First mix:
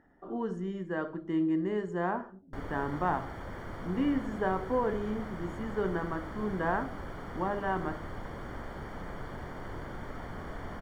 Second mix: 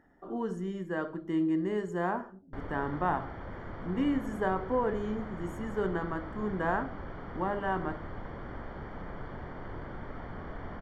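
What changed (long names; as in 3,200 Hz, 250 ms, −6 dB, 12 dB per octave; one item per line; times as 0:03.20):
speech: remove high-frequency loss of the air 67 metres
background: add high-frequency loss of the air 220 metres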